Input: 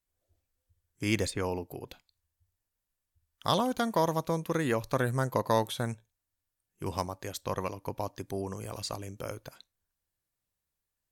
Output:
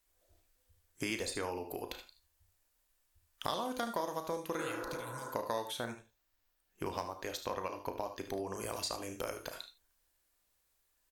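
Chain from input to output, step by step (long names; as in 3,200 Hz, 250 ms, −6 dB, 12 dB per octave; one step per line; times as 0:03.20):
parametric band 120 Hz −13.5 dB 1.7 octaves
reverb whose tail is shaped and stops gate 110 ms flat, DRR 10 dB
downward compressor 4 to 1, threshold −46 dBFS, peak gain reduction 19.5 dB
0:04.62–0:05.28: healed spectral selection 200–2,000 Hz both
0:05.77–0:08.54: parametric band 9,500 Hz −9.5 dB 0.96 octaves
ambience of single reflections 34 ms −11 dB, 74 ms −13.5 dB
level +9 dB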